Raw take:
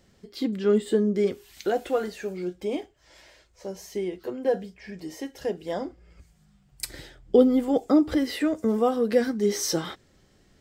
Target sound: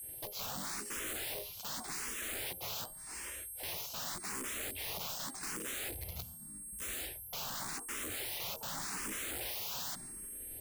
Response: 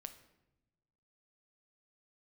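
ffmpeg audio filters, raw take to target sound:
-filter_complex "[0:a]agate=range=-33dB:threshold=-54dB:ratio=3:detection=peak,areverse,acompressor=threshold=-35dB:ratio=16,areverse,aeval=exprs='val(0)+0.00251*sin(2*PI*8500*n/s)':c=same,asplit=4[a][b][c][d];[b]asetrate=55563,aresample=44100,atempo=0.793701,volume=-4dB[e];[c]asetrate=66075,aresample=44100,atempo=0.66742,volume=-1dB[f];[d]asetrate=88200,aresample=44100,atempo=0.5,volume=-14dB[g];[a][e][f][g]amix=inputs=4:normalize=0,aeval=exprs='(mod(89.1*val(0)+1,2)-1)/89.1':c=same,asplit=2[h][i];[i]afreqshift=0.86[j];[h][j]amix=inputs=2:normalize=1,volume=6.5dB"

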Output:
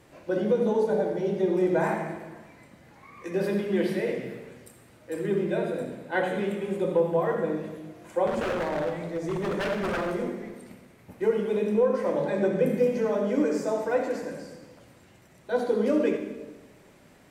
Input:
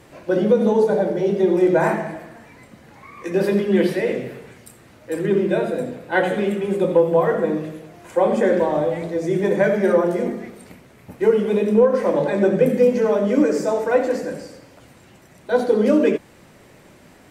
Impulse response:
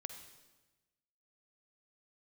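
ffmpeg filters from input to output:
-filter_complex "[0:a]asettb=1/sr,asplit=3[a][b][c];[a]atrim=end=8.274[d];[b]atrim=start=8.27:end=10.14,asetpts=PTS-STARTPTS,afade=t=in:d=0.004:c=qsin,afade=t=out:st=1.866:d=0.004:c=qsin,aeval=exprs='0.158*(abs(mod(val(0)/0.158+3,4)-2)-1)':c=same[e];[c]atrim=start=10.136[f];[d][e]acrossfade=d=0.004:c1=hsin:c2=qsin[g];[g][f]acrossfade=d=0.004:c1=qsin:c2=hsin[h];[1:a]atrim=start_sample=2205[i];[h][i]afir=irnorm=-1:irlink=0,volume=-4dB"

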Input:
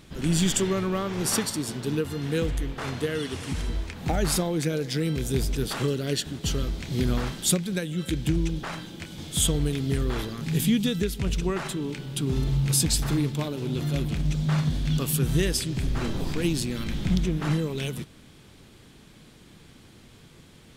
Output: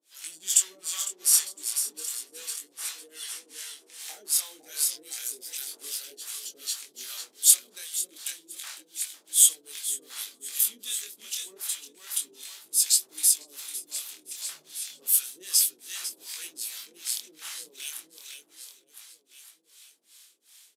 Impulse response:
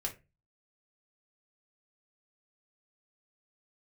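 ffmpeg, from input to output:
-filter_complex "[0:a]aresample=32000,aresample=44100,asplit=2[a][b];[b]aecho=0:1:505|1010|1515|2020|2525|3030|3535:0.562|0.309|0.17|0.0936|0.0515|0.0283|0.0156[c];[a][c]amix=inputs=2:normalize=0,acrossover=split=590[d][e];[d]aeval=exprs='val(0)*(1-1/2+1/2*cos(2*PI*2.6*n/s))':c=same[f];[e]aeval=exprs='val(0)*(1-1/2-1/2*cos(2*PI*2.6*n/s))':c=same[g];[f][g]amix=inputs=2:normalize=0,highpass=f=290:w=0.5412,highpass=f=290:w=1.3066,aderivative,flanger=delay=18.5:depth=7.9:speed=0.31,equalizer=f=12k:t=o:w=2.8:g=6.5,volume=5dB"

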